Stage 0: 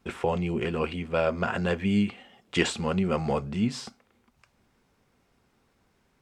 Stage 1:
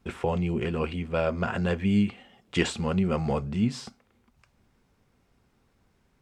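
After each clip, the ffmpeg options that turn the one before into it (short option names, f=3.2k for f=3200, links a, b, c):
-af "lowshelf=f=170:g=7.5,volume=-2dB"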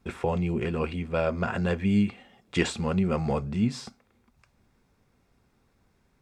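-af "bandreject=f=3k:w=13"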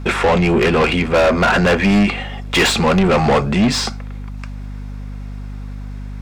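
-filter_complex "[0:a]asplit=2[a][b];[b]highpass=f=720:p=1,volume=30dB,asoftclip=type=tanh:threshold=-8dB[c];[a][c]amix=inputs=2:normalize=0,lowpass=f=4k:p=1,volume=-6dB,aeval=exprs='val(0)+0.0316*(sin(2*PI*50*n/s)+sin(2*PI*2*50*n/s)/2+sin(2*PI*3*50*n/s)/3+sin(2*PI*4*50*n/s)/4+sin(2*PI*5*50*n/s)/5)':c=same,volume=3dB"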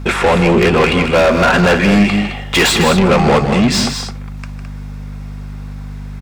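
-filter_complex "[0:a]highshelf=f=9.6k:g=5.5,asplit=2[a][b];[b]aecho=0:1:154.5|212.8:0.316|0.355[c];[a][c]amix=inputs=2:normalize=0,volume=2dB"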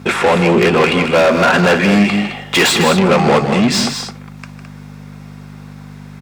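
-af "highpass=140"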